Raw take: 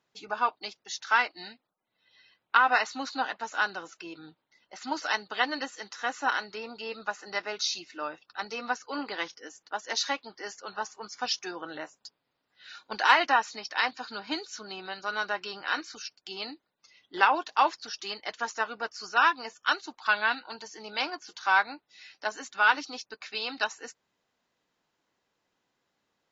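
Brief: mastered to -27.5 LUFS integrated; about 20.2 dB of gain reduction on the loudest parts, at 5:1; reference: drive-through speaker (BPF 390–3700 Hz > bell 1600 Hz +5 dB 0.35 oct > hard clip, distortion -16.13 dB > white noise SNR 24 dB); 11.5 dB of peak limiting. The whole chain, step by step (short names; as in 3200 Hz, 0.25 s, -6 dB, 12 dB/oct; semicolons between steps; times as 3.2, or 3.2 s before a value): compressor 5:1, threshold -39 dBFS; limiter -32.5 dBFS; BPF 390–3700 Hz; bell 1600 Hz +5 dB 0.35 oct; hard clip -37 dBFS; white noise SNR 24 dB; gain +18.5 dB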